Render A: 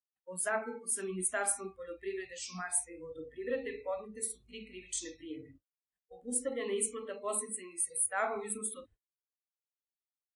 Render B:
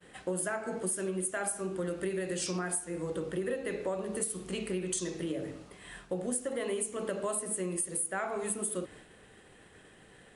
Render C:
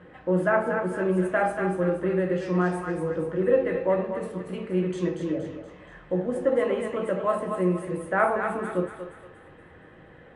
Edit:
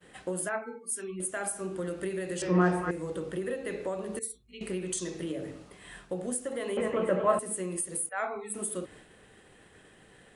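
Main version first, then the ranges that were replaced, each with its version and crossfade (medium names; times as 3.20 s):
B
0.49–1.20 s: from A
2.42–2.91 s: from C
4.19–4.61 s: from A
6.77–7.39 s: from C
8.09–8.54 s: from A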